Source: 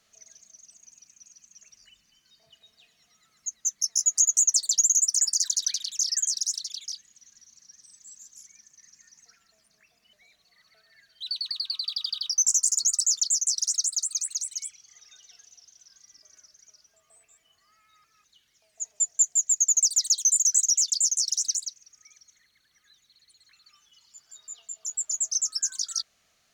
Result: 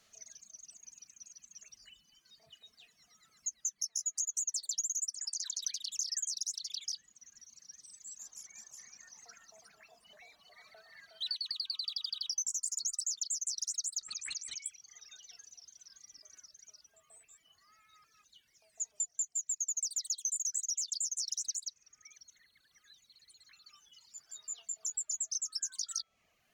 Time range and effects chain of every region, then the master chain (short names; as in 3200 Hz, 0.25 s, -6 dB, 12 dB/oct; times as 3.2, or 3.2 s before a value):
5.14–5.62 block floating point 7-bit + three-band isolator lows -21 dB, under 410 Hz, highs -13 dB, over 7400 Hz + compressor, threshold -27 dBFS
8.19–11.36 bell 790 Hz +13 dB 1.6 oct + echo 0.364 s -4.5 dB
14.01–14.66 air absorption 160 m + backwards sustainer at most 26 dB/s
whole clip: reverb removal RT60 0.98 s; de-hum 330.5 Hz, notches 10; compressor 5:1, threshold -34 dBFS